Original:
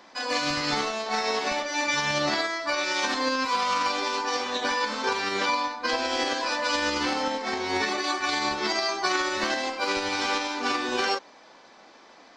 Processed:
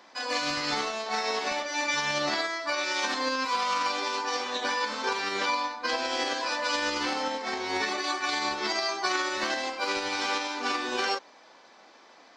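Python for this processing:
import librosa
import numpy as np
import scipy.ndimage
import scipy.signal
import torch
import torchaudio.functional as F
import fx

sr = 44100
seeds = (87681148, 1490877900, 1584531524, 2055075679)

y = fx.low_shelf(x, sr, hz=200.0, db=-8.0)
y = y * 10.0 ** (-2.0 / 20.0)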